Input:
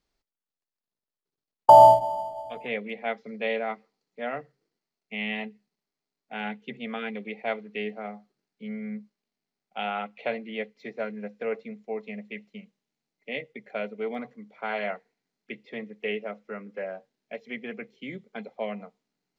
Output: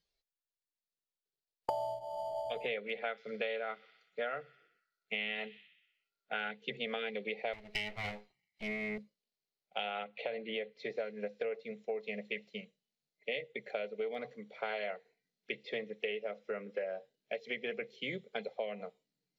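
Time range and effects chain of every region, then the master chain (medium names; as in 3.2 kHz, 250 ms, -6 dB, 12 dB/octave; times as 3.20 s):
2.77–6.51 s: peaking EQ 1.4 kHz +12.5 dB 0.38 oct + feedback echo behind a high-pass 62 ms, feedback 65%, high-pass 3.1 kHz, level -17.5 dB
7.53–8.98 s: comb filter that takes the minimum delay 1 ms + peaking EQ 2.3 kHz +10 dB 0.48 oct
10.03–10.90 s: treble shelf 5.1 kHz -11 dB + compression 2.5:1, threshold -34 dBFS
whole clip: spectral noise reduction 12 dB; graphic EQ 250/500/1000/4000 Hz -11/+7/-7/+7 dB; compression 16:1, threshold -36 dBFS; trim +2.5 dB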